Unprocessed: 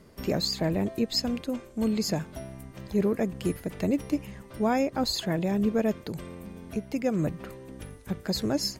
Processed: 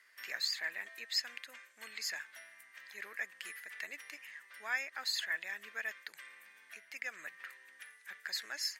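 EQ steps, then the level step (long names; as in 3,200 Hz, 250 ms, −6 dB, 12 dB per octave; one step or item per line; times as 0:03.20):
high-pass with resonance 1,800 Hz, resonance Q 5.2
−7.0 dB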